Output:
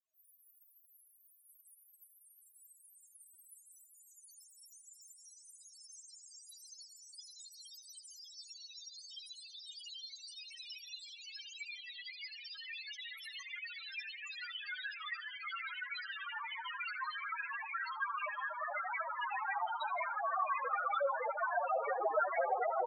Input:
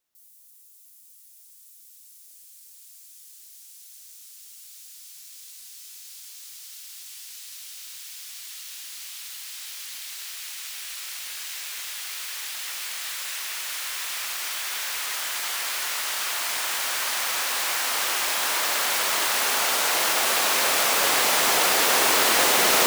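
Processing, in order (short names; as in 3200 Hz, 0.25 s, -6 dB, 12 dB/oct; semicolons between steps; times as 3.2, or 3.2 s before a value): in parallel at 0 dB: compressor, threshold -37 dBFS, peak gain reduction 19 dB; on the sum: vibrato 10 Hz 12 cents; loudest bins only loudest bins 2; feedback echo 79 ms, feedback 27%, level -18 dB; cascading flanger rising 0.3 Hz; gain +6.5 dB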